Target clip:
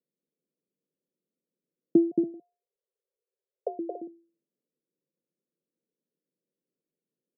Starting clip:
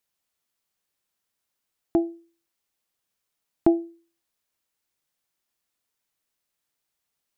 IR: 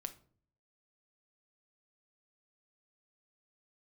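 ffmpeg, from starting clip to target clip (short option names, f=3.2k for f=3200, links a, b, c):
-filter_complex "[0:a]asplit=2[a][b];[b]acompressor=threshold=-27dB:ratio=6,volume=-1.5dB[c];[a][c]amix=inputs=2:normalize=0,acrusher=bits=5:mode=log:mix=0:aa=0.000001,asettb=1/sr,asplit=3[d][e][f];[d]atrim=end=2.114[g];[e]atrim=start=2.11:end=3.79,asetpts=PTS-STARTPTS,afade=t=in:d=0.004:c=qsin,afade=t=out:st=1.676:d=0.004:c=qsin,afreqshift=370[h];[f]atrim=start=3.786[i];[g][h]acrossfade=d=0.004:c1=hsin:c2=qsin[j];[j][i]acrossfade=d=0.004:c1=qsin:c2=hsin,asuperpass=centerf=280:order=12:qfactor=0.72,aecho=1:1:224.5|282.8:0.562|0.251"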